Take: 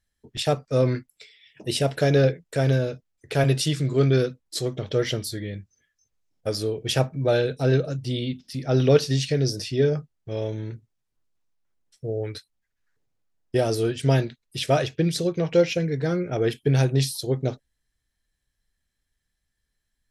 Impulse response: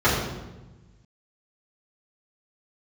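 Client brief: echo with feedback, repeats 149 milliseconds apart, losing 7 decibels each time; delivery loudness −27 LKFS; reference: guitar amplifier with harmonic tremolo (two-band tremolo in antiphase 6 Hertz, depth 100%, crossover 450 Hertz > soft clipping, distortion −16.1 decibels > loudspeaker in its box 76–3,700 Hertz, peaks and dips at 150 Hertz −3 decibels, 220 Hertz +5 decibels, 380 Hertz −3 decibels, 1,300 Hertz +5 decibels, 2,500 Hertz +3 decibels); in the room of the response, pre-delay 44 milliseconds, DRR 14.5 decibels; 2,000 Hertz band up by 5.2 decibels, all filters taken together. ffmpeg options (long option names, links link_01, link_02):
-filter_complex "[0:a]equalizer=frequency=2000:width_type=o:gain=4.5,aecho=1:1:149|298|447|596|745:0.447|0.201|0.0905|0.0407|0.0183,asplit=2[link_01][link_02];[1:a]atrim=start_sample=2205,adelay=44[link_03];[link_02][link_03]afir=irnorm=-1:irlink=0,volume=-34.5dB[link_04];[link_01][link_04]amix=inputs=2:normalize=0,acrossover=split=450[link_05][link_06];[link_05]aeval=exprs='val(0)*(1-1/2+1/2*cos(2*PI*6*n/s))':channel_layout=same[link_07];[link_06]aeval=exprs='val(0)*(1-1/2-1/2*cos(2*PI*6*n/s))':channel_layout=same[link_08];[link_07][link_08]amix=inputs=2:normalize=0,asoftclip=threshold=-17dB,highpass=76,equalizer=frequency=150:width_type=q:width=4:gain=-3,equalizer=frequency=220:width_type=q:width=4:gain=5,equalizer=frequency=380:width_type=q:width=4:gain=-3,equalizer=frequency=1300:width_type=q:width=4:gain=5,equalizer=frequency=2500:width_type=q:width=4:gain=3,lowpass=frequency=3700:width=0.5412,lowpass=frequency=3700:width=1.3066,volume=3dB"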